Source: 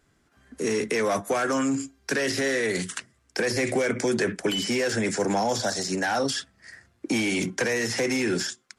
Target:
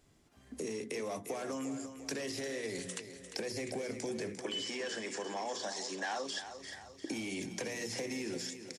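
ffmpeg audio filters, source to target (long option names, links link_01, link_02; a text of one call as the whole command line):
ffmpeg -i in.wav -filter_complex "[0:a]equalizer=frequency=1500:width=2.1:gain=-10.5,bandreject=frequency=60:width_type=h:width=6,bandreject=frequency=120:width_type=h:width=6,bandreject=frequency=180:width_type=h:width=6,bandreject=frequency=240:width_type=h:width=6,bandreject=frequency=300:width_type=h:width=6,bandreject=frequency=360:width_type=h:width=6,bandreject=frequency=420:width_type=h:width=6,bandreject=frequency=480:width_type=h:width=6,acompressor=threshold=-39dB:ratio=4,asettb=1/sr,asplit=3[link_01][link_02][link_03];[link_01]atrim=end=4.394[link_04];[link_02]atrim=start=4.39:end=6.39,asetpts=PTS-STARTPTS,afade=type=in:duration=0.004:curve=qsin,afade=type=out:start_time=1.996:duration=0.004:curve=qsin,highpass=310,equalizer=frequency=1100:width_type=q:width=4:gain=9,equalizer=frequency=1700:width_type=q:width=4:gain=9,equalizer=frequency=3200:width_type=q:width=4:gain=5,lowpass=frequency=8600:width=0.5412,lowpass=frequency=8600:width=1.3066[link_05];[link_03]atrim=start=6.386[link_06];[link_04][link_05]acrossfade=duration=0.004:curve1=hsin:curve2=qsin[link_07];[link_07][link_06]acrossfade=duration=0.004:curve1=qsin:curve2=hsin,aecho=1:1:349|698|1047|1396|1745:0.299|0.149|0.0746|0.0373|0.0187" out.wav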